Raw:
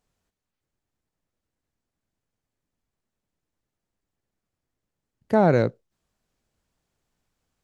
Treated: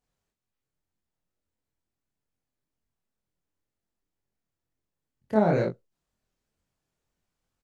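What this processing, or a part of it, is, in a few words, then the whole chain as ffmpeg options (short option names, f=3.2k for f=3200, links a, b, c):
double-tracked vocal: -filter_complex "[0:a]asplit=2[a][b];[b]adelay=23,volume=-4dB[c];[a][c]amix=inputs=2:normalize=0,flanger=delay=22.5:depth=7.8:speed=2.1,volume=-3.5dB"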